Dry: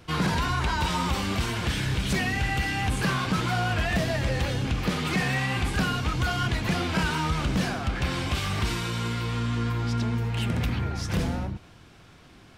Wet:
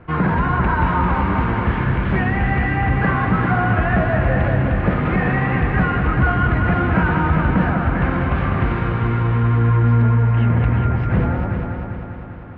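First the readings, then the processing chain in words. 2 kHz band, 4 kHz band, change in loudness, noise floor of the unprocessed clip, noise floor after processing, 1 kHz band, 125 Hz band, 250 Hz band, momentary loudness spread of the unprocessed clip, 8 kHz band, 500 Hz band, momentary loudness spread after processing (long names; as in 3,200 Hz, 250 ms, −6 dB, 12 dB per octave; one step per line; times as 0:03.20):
+7.0 dB, −9.0 dB, +9.0 dB, −51 dBFS, −29 dBFS, +9.5 dB, +10.5 dB, +9.0 dB, 3 LU, below −35 dB, +9.5 dB, 4 LU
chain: low-pass filter 1,900 Hz 24 dB per octave
echo machine with several playback heads 198 ms, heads first and second, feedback 58%, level −8 dB
level +7.5 dB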